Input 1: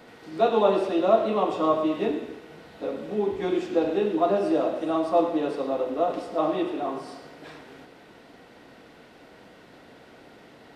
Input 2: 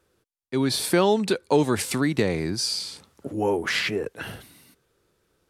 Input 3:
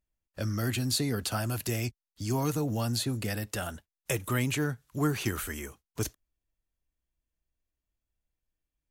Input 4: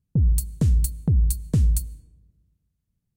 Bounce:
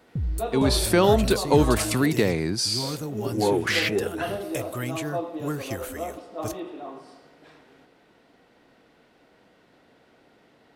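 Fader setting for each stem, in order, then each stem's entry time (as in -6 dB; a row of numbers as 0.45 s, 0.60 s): -8.5 dB, +1.0 dB, -3.0 dB, -8.5 dB; 0.00 s, 0.00 s, 0.45 s, 0.00 s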